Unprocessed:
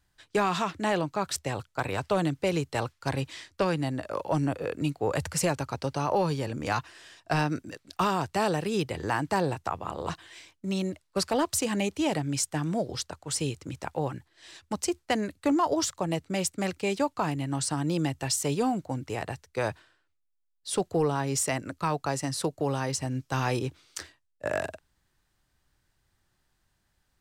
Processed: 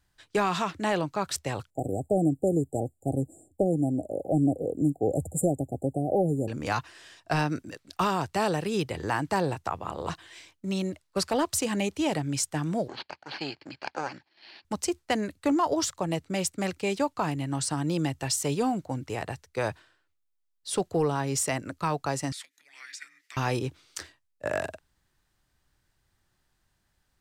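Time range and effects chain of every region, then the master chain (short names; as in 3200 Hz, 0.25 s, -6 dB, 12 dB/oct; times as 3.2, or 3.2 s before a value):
1.7–6.48 brick-wall FIR band-stop 810–7000 Hz + bell 280 Hz +6 dB 1 oct
12.88–14.65 minimum comb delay 0.33 ms + careless resampling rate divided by 6×, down filtered, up hold + speaker cabinet 290–5700 Hz, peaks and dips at 470 Hz -7 dB, 850 Hz +5 dB, 1600 Hz +9 dB, 2400 Hz +4 dB, 4400 Hz +9 dB
22.32–23.37 frequency shift -420 Hz + compressor, threshold -38 dBFS + resonant high-pass 1900 Hz, resonance Q 6.6
whole clip: dry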